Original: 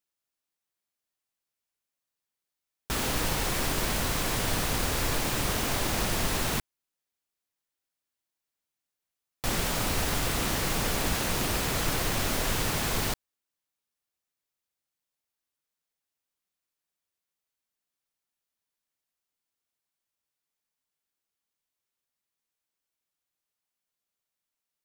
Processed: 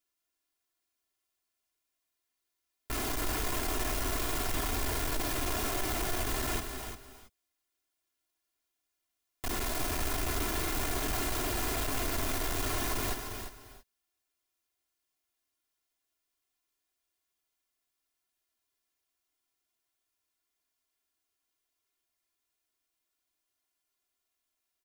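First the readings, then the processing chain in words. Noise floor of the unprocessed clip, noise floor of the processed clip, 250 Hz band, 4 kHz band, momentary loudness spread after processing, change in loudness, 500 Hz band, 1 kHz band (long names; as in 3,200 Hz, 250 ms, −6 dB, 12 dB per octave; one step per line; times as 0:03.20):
below −85 dBFS, −85 dBFS, −4.5 dB, −7.0 dB, 7 LU, −4.5 dB, −4.0 dB, −4.0 dB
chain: stylus tracing distortion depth 0.34 ms
comb filter 2.9 ms, depth 84%
soft clipping −30.5 dBFS, distortion −7 dB
on a send: single-tap delay 350 ms −10 dB
on the sum: reverb whose tail is shaped and stops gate 350 ms rising, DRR 8 dB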